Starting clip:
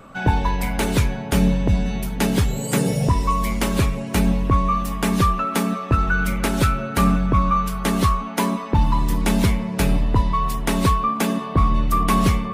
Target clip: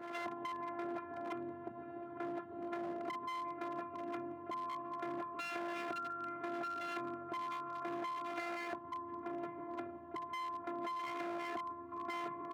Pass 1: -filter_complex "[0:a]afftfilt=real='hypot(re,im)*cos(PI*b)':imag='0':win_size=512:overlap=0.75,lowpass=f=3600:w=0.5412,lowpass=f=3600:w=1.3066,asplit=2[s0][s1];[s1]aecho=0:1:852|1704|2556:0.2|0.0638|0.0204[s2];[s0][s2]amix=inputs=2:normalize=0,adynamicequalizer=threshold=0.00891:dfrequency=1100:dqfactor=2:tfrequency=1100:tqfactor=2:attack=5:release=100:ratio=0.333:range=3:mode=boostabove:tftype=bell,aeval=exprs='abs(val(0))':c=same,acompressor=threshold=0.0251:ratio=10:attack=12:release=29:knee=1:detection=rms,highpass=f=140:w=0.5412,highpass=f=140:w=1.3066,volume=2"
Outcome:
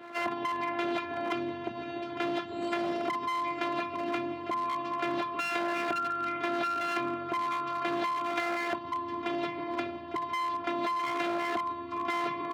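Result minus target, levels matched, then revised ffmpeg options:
compression: peak gain reduction -10 dB; 4 kHz band +3.0 dB
-filter_complex "[0:a]afftfilt=real='hypot(re,im)*cos(PI*b)':imag='0':win_size=512:overlap=0.75,lowpass=f=1600:w=0.5412,lowpass=f=1600:w=1.3066,asplit=2[s0][s1];[s1]aecho=0:1:852|1704|2556:0.2|0.0638|0.0204[s2];[s0][s2]amix=inputs=2:normalize=0,adynamicequalizer=threshold=0.00891:dfrequency=1100:dqfactor=2:tfrequency=1100:tqfactor=2:attack=5:release=100:ratio=0.333:range=3:mode=boostabove:tftype=bell,aeval=exprs='abs(val(0))':c=same,acompressor=threshold=0.00708:ratio=10:attack=12:release=29:knee=1:detection=rms,highpass=f=140:w=0.5412,highpass=f=140:w=1.3066,volume=2"

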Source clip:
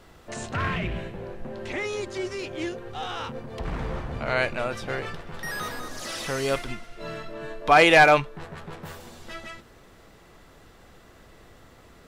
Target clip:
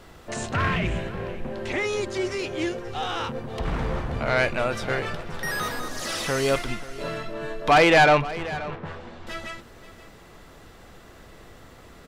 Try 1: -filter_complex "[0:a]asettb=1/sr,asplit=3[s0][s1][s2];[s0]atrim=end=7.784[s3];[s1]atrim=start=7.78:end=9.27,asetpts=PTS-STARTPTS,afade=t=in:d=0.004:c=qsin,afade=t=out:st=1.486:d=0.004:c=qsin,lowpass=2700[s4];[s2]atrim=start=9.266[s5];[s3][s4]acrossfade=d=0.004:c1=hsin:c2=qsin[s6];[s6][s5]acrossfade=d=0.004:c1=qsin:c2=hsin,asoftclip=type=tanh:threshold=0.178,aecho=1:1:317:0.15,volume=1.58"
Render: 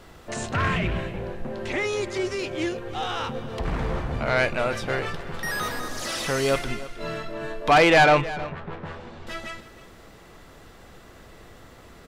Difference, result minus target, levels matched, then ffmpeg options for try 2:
echo 214 ms early
-filter_complex "[0:a]asettb=1/sr,asplit=3[s0][s1][s2];[s0]atrim=end=7.784[s3];[s1]atrim=start=7.78:end=9.27,asetpts=PTS-STARTPTS,afade=t=in:d=0.004:c=qsin,afade=t=out:st=1.486:d=0.004:c=qsin,lowpass=2700[s4];[s2]atrim=start=9.266[s5];[s3][s4]acrossfade=d=0.004:c1=hsin:c2=qsin[s6];[s6][s5]acrossfade=d=0.004:c1=qsin:c2=hsin,asoftclip=type=tanh:threshold=0.178,aecho=1:1:531:0.15,volume=1.58"

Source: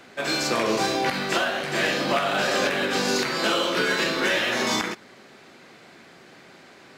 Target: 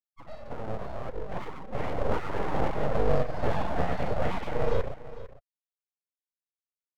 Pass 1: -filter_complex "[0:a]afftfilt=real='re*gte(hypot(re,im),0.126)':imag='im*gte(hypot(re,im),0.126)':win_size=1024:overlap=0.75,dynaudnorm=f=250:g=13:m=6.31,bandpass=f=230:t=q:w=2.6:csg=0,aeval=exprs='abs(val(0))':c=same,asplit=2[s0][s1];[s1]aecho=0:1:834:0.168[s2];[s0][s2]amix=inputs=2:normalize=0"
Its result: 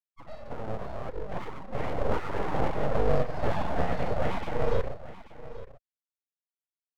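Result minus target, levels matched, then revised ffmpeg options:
echo 383 ms late
-filter_complex "[0:a]afftfilt=real='re*gte(hypot(re,im),0.126)':imag='im*gte(hypot(re,im),0.126)':win_size=1024:overlap=0.75,dynaudnorm=f=250:g=13:m=6.31,bandpass=f=230:t=q:w=2.6:csg=0,aeval=exprs='abs(val(0))':c=same,asplit=2[s0][s1];[s1]aecho=0:1:451:0.168[s2];[s0][s2]amix=inputs=2:normalize=0"

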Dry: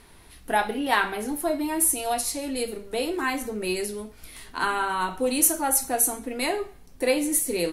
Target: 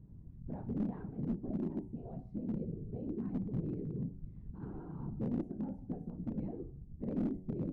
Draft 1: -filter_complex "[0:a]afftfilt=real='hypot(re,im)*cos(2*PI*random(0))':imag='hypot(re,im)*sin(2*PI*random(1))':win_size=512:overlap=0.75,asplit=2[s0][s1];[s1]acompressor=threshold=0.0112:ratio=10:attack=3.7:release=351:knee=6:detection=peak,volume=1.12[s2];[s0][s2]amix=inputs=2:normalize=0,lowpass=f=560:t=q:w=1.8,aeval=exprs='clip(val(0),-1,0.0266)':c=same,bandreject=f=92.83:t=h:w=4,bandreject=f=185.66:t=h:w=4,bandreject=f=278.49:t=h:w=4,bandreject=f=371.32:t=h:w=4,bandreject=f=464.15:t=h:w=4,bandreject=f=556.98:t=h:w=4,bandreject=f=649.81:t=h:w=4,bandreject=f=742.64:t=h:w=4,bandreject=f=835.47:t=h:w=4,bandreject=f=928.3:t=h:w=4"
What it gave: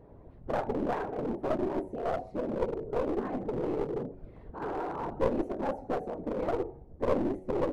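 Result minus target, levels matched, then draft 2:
500 Hz band +9.0 dB
-filter_complex "[0:a]afftfilt=real='hypot(re,im)*cos(2*PI*random(0))':imag='hypot(re,im)*sin(2*PI*random(1))':win_size=512:overlap=0.75,asplit=2[s0][s1];[s1]acompressor=threshold=0.0112:ratio=10:attack=3.7:release=351:knee=6:detection=peak,volume=1.12[s2];[s0][s2]amix=inputs=2:normalize=0,lowpass=f=180:t=q:w=1.8,aeval=exprs='clip(val(0),-1,0.0266)':c=same,bandreject=f=92.83:t=h:w=4,bandreject=f=185.66:t=h:w=4,bandreject=f=278.49:t=h:w=4,bandreject=f=371.32:t=h:w=4,bandreject=f=464.15:t=h:w=4,bandreject=f=556.98:t=h:w=4,bandreject=f=649.81:t=h:w=4,bandreject=f=742.64:t=h:w=4,bandreject=f=835.47:t=h:w=4,bandreject=f=928.3:t=h:w=4"

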